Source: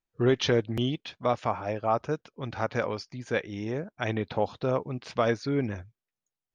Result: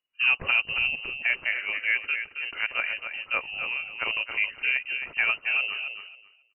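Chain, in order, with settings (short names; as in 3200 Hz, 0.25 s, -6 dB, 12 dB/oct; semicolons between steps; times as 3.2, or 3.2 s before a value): on a send: feedback echo 0.271 s, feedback 18%, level -8 dB; on the sum: inverted band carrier 2900 Hz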